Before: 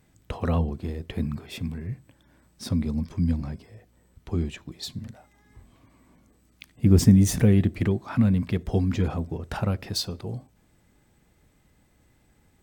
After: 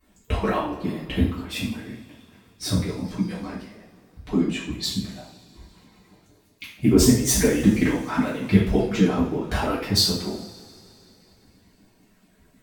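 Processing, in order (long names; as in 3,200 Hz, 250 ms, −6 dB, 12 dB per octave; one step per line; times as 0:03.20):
harmonic-percussive split with one part muted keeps percussive
coupled-rooms reverb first 0.52 s, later 3.1 s, from −22 dB, DRR −9 dB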